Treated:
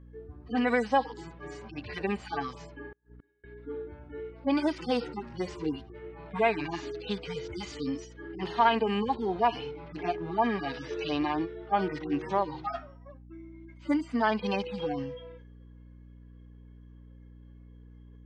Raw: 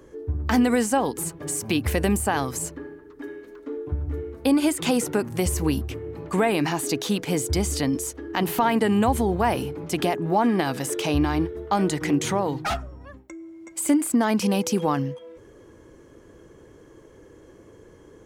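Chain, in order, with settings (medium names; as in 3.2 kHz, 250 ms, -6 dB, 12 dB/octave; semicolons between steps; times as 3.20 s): harmonic-percussive separation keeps harmonic; low-pass 5 kHz 24 dB/octave; level-controlled noise filter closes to 3 kHz, open at -19.5 dBFS; high-pass 1 kHz 6 dB/octave; gate -56 dBFS, range -8 dB; spectral noise reduction 7 dB; hum 60 Hz, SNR 18 dB; 2.92–3.44 s: inverted gate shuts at -44 dBFS, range -32 dB; trim +3.5 dB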